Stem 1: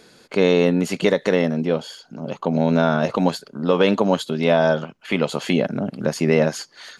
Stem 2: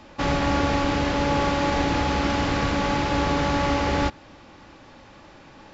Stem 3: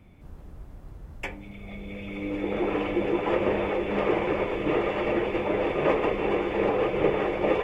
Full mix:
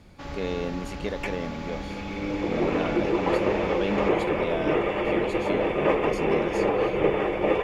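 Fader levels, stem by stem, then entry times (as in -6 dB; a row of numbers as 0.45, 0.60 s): -14.0, -15.0, +1.0 dB; 0.00, 0.00, 0.00 s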